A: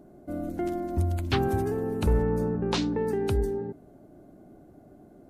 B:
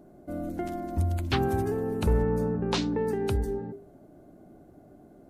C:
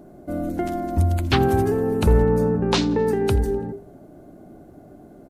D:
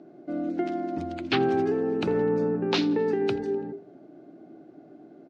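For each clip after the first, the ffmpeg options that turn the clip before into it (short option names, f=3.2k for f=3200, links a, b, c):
-af "bandreject=f=50:t=h:w=6,bandreject=f=100:t=h:w=6,bandreject=f=150:t=h:w=6,bandreject=f=200:t=h:w=6,bandreject=f=250:t=h:w=6,bandreject=f=300:t=h:w=6,bandreject=f=350:t=h:w=6,bandreject=f=400:t=h:w=6"
-af "aecho=1:1:84|168|252|336:0.0708|0.0418|0.0246|0.0145,volume=7.5dB"
-af "highpass=f=160:w=0.5412,highpass=f=160:w=1.3066,equalizer=f=200:t=q:w=4:g=-7,equalizer=f=320:t=q:w=4:g=5,equalizer=f=550:t=q:w=4:g=-3,equalizer=f=1k:t=q:w=4:g=-6,equalizer=f=2.5k:t=q:w=4:g=3,lowpass=f=5.1k:w=0.5412,lowpass=f=5.1k:w=1.3066,volume=-4dB"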